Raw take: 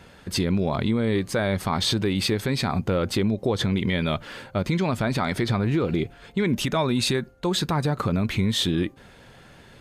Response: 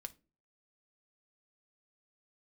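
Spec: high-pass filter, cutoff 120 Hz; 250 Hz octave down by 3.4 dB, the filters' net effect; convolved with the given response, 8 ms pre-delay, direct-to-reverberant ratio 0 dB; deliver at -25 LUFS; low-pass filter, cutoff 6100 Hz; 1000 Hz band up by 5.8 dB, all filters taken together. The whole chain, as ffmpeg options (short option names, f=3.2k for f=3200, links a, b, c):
-filter_complex "[0:a]highpass=120,lowpass=6.1k,equalizer=f=250:t=o:g=-4.5,equalizer=f=1k:t=o:g=7.5,asplit=2[a][b];[1:a]atrim=start_sample=2205,adelay=8[c];[b][c]afir=irnorm=-1:irlink=0,volume=4.5dB[d];[a][d]amix=inputs=2:normalize=0,volume=-2.5dB"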